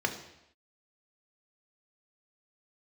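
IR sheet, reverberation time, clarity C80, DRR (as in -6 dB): not exponential, 12.0 dB, 3.5 dB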